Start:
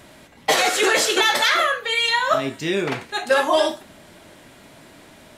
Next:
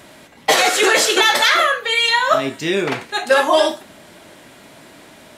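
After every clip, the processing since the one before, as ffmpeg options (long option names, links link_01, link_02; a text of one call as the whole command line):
ffmpeg -i in.wav -af "lowshelf=frequency=95:gain=-10,volume=4dB" out.wav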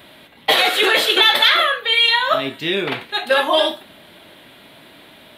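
ffmpeg -i in.wav -af "highshelf=frequency=5200:width_type=q:width=3:gain=-13.5,aexciter=amount=7.4:drive=3.1:freq=7500,volume=-3dB" out.wav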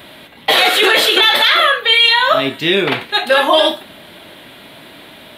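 ffmpeg -i in.wav -af "alimiter=level_in=7.5dB:limit=-1dB:release=50:level=0:latency=1,volume=-1dB" out.wav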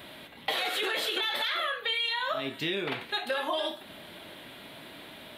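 ffmpeg -i in.wav -af "acompressor=threshold=-21dB:ratio=4,volume=-8.5dB" out.wav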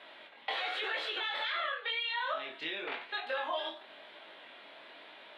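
ffmpeg -i in.wav -af "highpass=540,lowpass=3200,flanger=delay=18.5:depth=6.5:speed=0.95" out.wav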